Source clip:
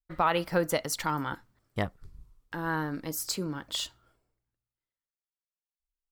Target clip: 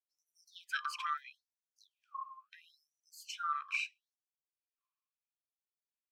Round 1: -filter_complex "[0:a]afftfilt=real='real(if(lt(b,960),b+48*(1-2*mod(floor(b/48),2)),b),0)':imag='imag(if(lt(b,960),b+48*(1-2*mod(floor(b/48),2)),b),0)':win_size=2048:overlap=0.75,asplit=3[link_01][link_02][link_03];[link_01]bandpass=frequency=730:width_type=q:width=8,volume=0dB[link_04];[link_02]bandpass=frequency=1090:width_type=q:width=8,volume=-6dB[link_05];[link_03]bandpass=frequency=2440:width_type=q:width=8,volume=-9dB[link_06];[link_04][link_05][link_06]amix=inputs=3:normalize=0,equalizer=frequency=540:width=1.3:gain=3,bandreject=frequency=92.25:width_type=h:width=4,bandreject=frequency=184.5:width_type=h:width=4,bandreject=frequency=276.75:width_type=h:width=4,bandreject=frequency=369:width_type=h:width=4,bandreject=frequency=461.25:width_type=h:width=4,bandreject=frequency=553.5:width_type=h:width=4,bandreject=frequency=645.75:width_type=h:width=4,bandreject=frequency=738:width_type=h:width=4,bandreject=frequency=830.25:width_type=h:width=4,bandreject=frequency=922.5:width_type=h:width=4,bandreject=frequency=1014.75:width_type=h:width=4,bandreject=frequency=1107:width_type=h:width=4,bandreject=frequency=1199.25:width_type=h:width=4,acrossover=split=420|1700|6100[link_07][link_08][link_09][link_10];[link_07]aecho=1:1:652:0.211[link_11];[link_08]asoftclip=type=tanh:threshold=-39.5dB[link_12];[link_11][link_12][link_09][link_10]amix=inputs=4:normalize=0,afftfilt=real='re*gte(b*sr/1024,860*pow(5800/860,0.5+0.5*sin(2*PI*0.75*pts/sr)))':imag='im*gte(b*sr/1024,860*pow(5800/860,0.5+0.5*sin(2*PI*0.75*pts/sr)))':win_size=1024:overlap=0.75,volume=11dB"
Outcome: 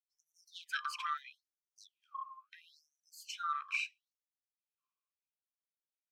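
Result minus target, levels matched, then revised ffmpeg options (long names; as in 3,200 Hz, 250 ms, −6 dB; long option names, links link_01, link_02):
soft clipping: distortion +10 dB
-filter_complex "[0:a]afftfilt=real='real(if(lt(b,960),b+48*(1-2*mod(floor(b/48),2)),b),0)':imag='imag(if(lt(b,960),b+48*(1-2*mod(floor(b/48),2)),b),0)':win_size=2048:overlap=0.75,asplit=3[link_01][link_02][link_03];[link_01]bandpass=frequency=730:width_type=q:width=8,volume=0dB[link_04];[link_02]bandpass=frequency=1090:width_type=q:width=8,volume=-6dB[link_05];[link_03]bandpass=frequency=2440:width_type=q:width=8,volume=-9dB[link_06];[link_04][link_05][link_06]amix=inputs=3:normalize=0,equalizer=frequency=540:width=1.3:gain=3,bandreject=frequency=92.25:width_type=h:width=4,bandreject=frequency=184.5:width_type=h:width=4,bandreject=frequency=276.75:width_type=h:width=4,bandreject=frequency=369:width_type=h:width=4,bandreject=frequency=461.25:width_type=h:width=4,bandreject=frequency=553.5:width_type=h:width=4,bandreject=frequency=645.75:width_type=h:width=4,bandreject=frequency=738:width_type=h:width=4,bandreject=frequency=830.25:width_type=h:width=4,bandreject=frequency=922.5:width_type=h:width=4,bandreject=frequency=1014.75:width_type=h:width=4,bandreject=frequency=1107:width_type=h:width=4,bandreject=frequency=1199.25:width_type=h:width=4,acrossover=split=420|1700|6100[link_07][link_08][link_09][link_10];[link_07]aecho=1:1:652:0.211[link_11];[link_08]asoftclip=type=tanh:threshold=-32dB[link_12];[link_11][link_12][link_09][link_10]amix=inputs=4:normalize=0,afftfilt=real='re*gte(b*sr/1024,860*pow(5800/860,0.5+0.5*sin(2*PI*0.75*pts/sr)))':imag='im*gte(b*sr/1024,860*pow(5800/860,0.5+0.5*sin(2*PI*0.75*pts/sr)))':win_size=1024:overlap=0.75,volume=11dB"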